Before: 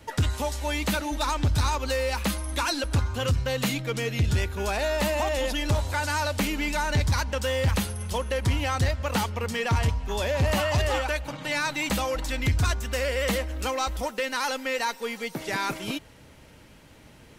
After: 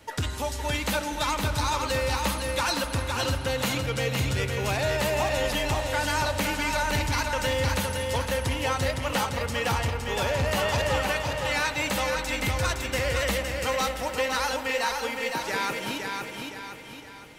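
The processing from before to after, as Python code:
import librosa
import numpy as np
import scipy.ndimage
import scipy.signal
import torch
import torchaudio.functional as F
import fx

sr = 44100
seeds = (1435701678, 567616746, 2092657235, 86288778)

p1 = fx.low_shelf(x, sr, hz=270.0, db=-7.0)
p2 = p1 + fx.echo_feedback(p1, sr, ms=513, feedback_pct=44, wet_db=-4.5, dry=0)
y = fx.rev_spring(p2, sr, rt60_s=3.6, pass_ms=(46,), chirp_ms=60, drr_db=9.5)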